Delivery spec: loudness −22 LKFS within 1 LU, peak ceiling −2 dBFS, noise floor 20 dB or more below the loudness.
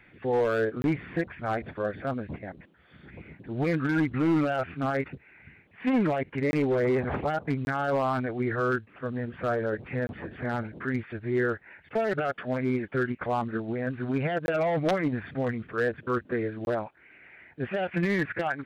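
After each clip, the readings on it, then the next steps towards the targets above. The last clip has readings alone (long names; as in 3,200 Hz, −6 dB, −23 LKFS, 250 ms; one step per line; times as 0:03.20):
share of clipped samples 0.8%; peaks flattened at −19.0 dBFS; number of dropouts 6; longest dropout 21 ms; integrated loudness −29.0 LKFS; sample peak −19.0 dBFS; target loudness −22.0 LKFS
→ clipped peaks rebuilt −19 dBFS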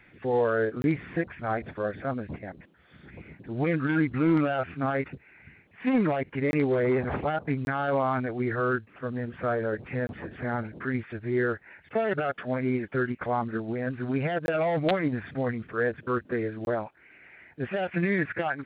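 share of clipped samples 0.0%; number of dropouts 6; longest dropout 21 ms
→ repair the gap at 0:00.82/0:06.51/0:07.65/0:10.07/0:14.46/0:16.65, 21 ms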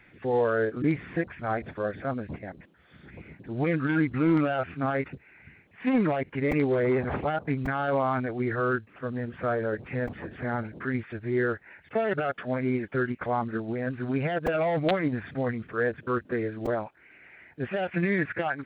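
number of dropouts 0; integrated loudness −28.5 LKFS; sample peak −12.5 dBFS; target loudness −22.0 LKFS
→ level +6.5 dB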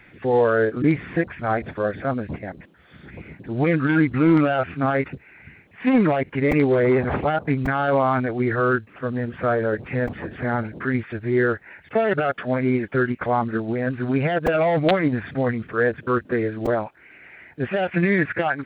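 integrated loudness −22.0 LKFS; sample peak −6.0 dBFS; background noise floor −51 dBFS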